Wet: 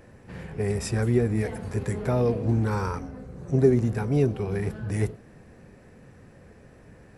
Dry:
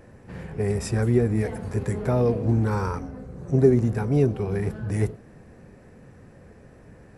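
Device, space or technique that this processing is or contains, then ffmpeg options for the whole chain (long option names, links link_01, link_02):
presence and air boost: -af "equalizer=frequency=3200:width_type=o:width=1.9:gain=3.5,highshelf=frequency=9600:gain=3.5,volume=-2dB"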